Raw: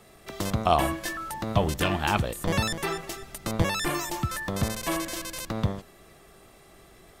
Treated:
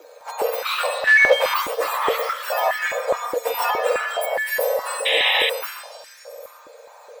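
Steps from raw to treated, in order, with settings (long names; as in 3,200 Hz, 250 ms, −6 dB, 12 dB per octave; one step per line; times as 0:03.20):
frequency axis turned over on the octave scale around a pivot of 1,600 Hz
0:04.21–0:05.20: graphic EQ with 15 bands 1,000 Hz −6 dB, 2,500 Hz −5 dB, 10,000 Hz +11 dB
echo through a band-pass that steps 267 ms, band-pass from 4,200 Hz, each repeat 0.7 octaves, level −8 dB
in parallel at −4 dB: hard clipping −28.5 dBFS, distortion −10 dB
on the sum: dynamic equaliser 5,500 Hz, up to −7 dB, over −42 dBFS, Q 0.71
0:01.07–0:01.54: mid-hump overdrive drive 26 dB, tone 2,000 Hz, clips at −13.5 dBFS
on a send at −4 dB: convolution reverb RT60 0.50 s, pre-delay 119 ms
0:05.05–0:05.50: on the sum: sound drawn into the spectrogram noise 1,400–3,700 Hz −20 dBFS
frequency shifter +280 Hz
0:03.13–0:03.71: comb filter 4.2 ms, depth 98%
high-pass on a step sequencer 4.8 Hz 320–1,800 Hz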